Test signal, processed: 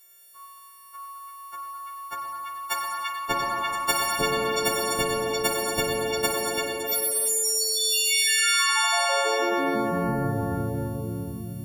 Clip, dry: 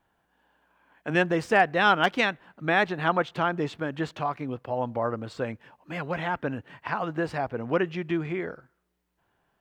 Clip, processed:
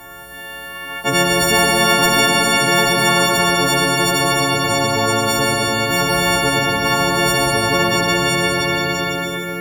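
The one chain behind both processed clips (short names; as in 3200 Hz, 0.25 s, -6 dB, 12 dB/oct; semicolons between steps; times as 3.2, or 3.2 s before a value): frequency quantiser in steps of 4 st; on a send: delay with a stepping band-pass 0.34 s, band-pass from 2800 Hz, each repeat 0.7 oct, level 0 dB; on the sum: plate-style reverb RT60 2.6 s, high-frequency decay 0.5×, pre-delay 0 ms, DRR -1 dB; spectral compressor 4:1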